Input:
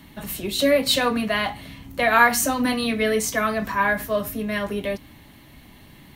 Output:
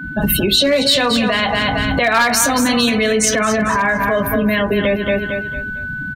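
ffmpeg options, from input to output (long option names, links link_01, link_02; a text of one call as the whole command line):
ffmpeg -i in.wav -filter_complex "[0:a]acrossover=split=7000[link_01][link_02];[link_01]acontrast=47[link_03];[link_03][link_02]amix=inputs=2:normalize=0,afftdn=noise_reduction=29:noise_floor=-29,aeval=exprs='val(0)+0.00631*sin(2*PI*1500*n/s)':channel_layout=same,asoftclip=type=hard:threshold=-6.5dB,asplit=2[link_04][link_05];[link_05]aecho=0:1:226|452|678|904:0.316|0.101|0.0324|0.0104[link_06];[link_04][link_06]amix=inputs=2:normalize=0,acompressor=threshold=-29dB:ratio=5,alimiter=level_in=24.5dB:limit=-1dB:release=50:level=0:latency=1,adynamicequalizer=threshold=0.0562:dfrequency=2600:dqfactor=0.7:tfrequency=2600:tqfactor=0.7:attack=5:release=100:ratio=0.375:range=3:mode=boostabove:tftype=highshelf,volume=-7.5dB" out.wav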